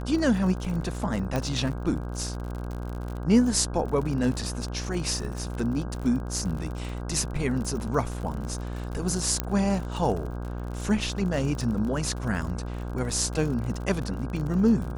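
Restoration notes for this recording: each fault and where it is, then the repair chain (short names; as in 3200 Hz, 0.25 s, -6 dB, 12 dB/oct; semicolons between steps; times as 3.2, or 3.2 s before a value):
buzz 60 Hz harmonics 27 -33 dBFS
crackle 48/s -33 dBFS
1.36 pop -15 dBFS
9.4 pop -9 dBFS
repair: de-click; de-hum 60 Hz, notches 27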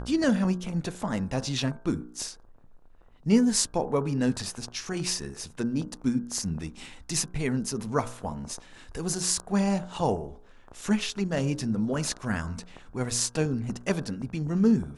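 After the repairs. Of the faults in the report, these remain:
1.36 pop
9.4 pop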